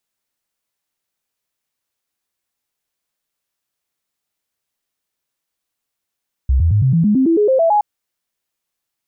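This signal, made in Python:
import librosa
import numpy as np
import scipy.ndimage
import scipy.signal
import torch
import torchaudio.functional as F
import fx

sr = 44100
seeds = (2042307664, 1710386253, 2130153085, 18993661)

y = fx.stepped_sweep(sr, from_hz=65.7, direction='up', per_octave=3, tones=12, dwell_s=0.11, gap_s=0.0, level_db=-10.0)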